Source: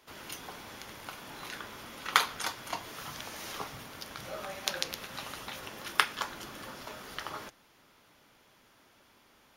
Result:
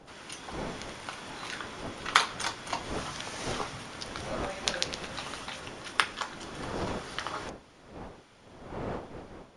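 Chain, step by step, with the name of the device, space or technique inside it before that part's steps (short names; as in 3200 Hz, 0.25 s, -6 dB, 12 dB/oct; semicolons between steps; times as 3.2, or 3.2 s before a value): smartphone video outdoors (wind noise 620 Hz -46 dBFS; AGC gain up to 4 dB; AAC 96 kbps 22050 Hz)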